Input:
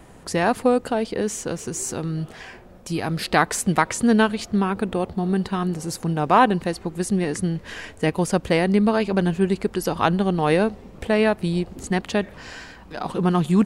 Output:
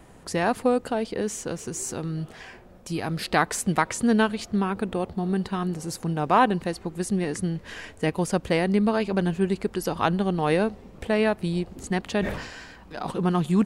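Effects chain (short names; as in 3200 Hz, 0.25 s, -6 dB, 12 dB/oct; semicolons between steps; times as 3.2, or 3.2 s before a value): 12.03–13.11 sustainer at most 61 dB/s; gain -3.5 dB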